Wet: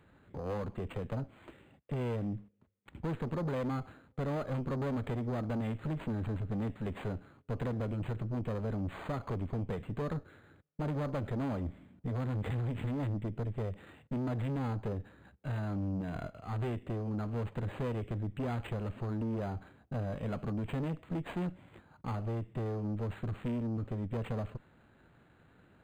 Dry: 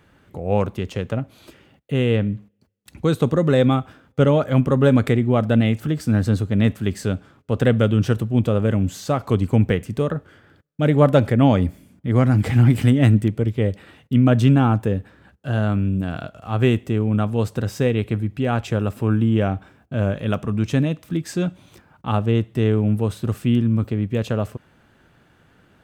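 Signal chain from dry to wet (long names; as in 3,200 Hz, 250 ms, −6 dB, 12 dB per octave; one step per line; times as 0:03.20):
downward compressor 6 to 1, threshold −19 dBFS, peak gain reduction 10 dB
tube saturation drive 27 dB, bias 0.55
linearly interpolated sample-rate reduction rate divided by 8×
level −4 dB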